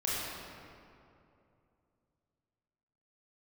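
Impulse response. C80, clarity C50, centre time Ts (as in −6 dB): −2.0 dB, −4.0 dB, 164 ms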